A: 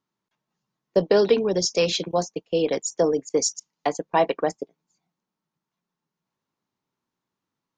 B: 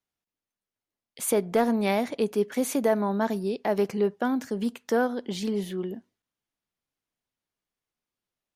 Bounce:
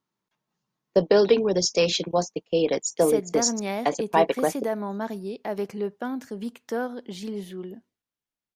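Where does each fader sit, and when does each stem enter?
0.0, −4.5 decibels; 0.00, 1.80 seconds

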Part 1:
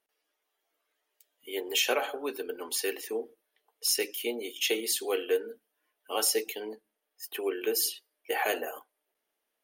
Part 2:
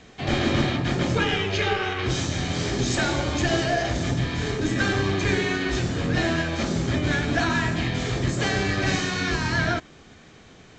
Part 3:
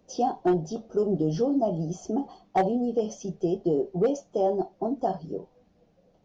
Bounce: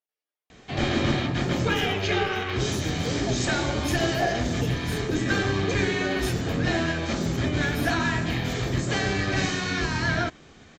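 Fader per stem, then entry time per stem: −14.5, −1.5, −9.5 decibels; 0.00, 0.50, 1.65 seconds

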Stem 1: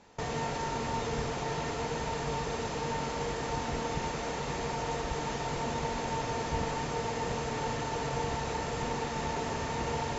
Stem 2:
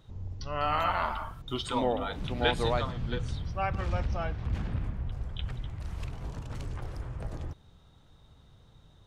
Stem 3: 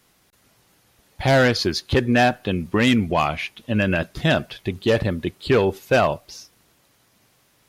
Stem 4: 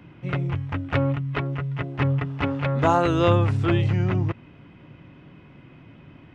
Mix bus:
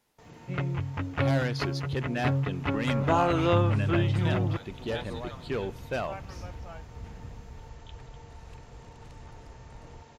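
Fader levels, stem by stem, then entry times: −19.5, −11.0, −14.5, −4.5 decibels; 0.00, 2.50, 0.00, 0.25 seconds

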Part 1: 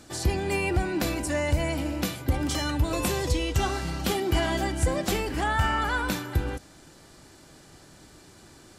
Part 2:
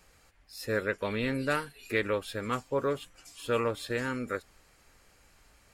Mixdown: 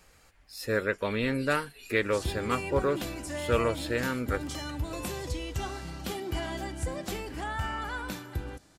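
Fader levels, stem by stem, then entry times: −8.5, +2.0 decibels; 2.00, 0.00 seconds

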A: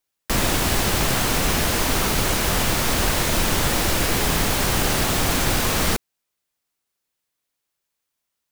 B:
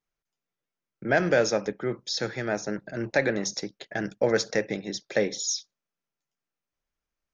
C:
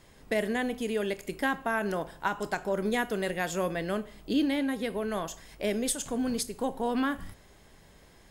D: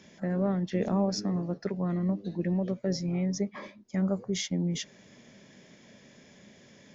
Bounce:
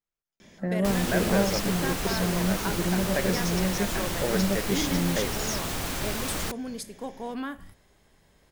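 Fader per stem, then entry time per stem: −10.5, −6.5, −5.5, +1.5 decibels; 0.55, 0.00, 0.40, 0.40 seconds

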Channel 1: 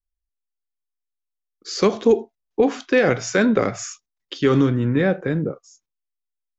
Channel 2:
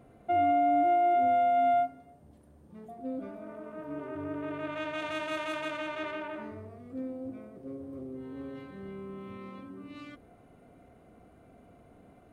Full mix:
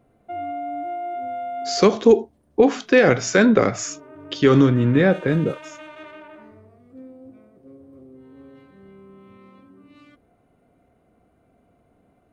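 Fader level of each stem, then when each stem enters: +2.5, −4.5 decibels; 0.00, 0.00 seconds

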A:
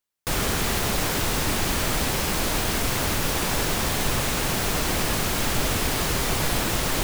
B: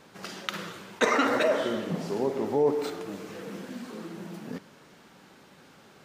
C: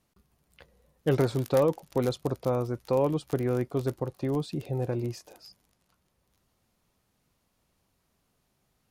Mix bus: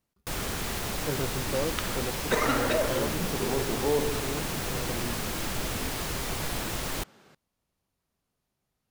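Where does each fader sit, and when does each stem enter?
−8.0, −3.0, −8.0 decibels; 0.00, 1.30, 0.00 seconds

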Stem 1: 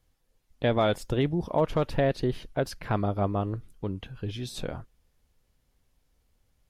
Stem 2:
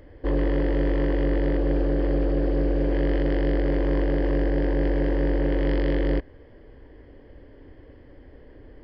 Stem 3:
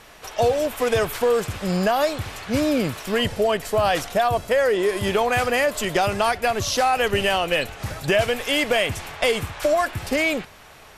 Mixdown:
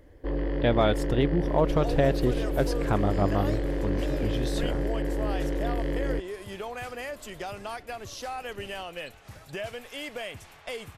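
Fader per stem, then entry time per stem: +1.0, −6.0, −16.0 decibels; 0.00, 0.00, 1.45 seconds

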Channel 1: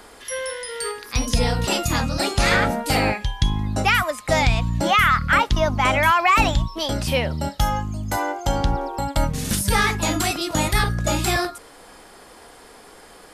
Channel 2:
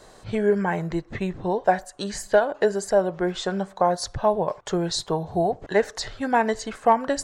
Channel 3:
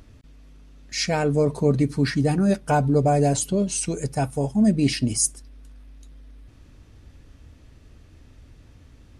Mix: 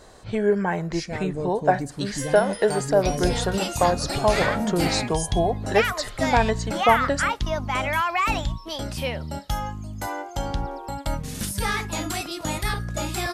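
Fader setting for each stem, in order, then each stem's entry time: −6.5, 0.0, −10.0 decibels; 1.90, 0.00, 0.00 seconds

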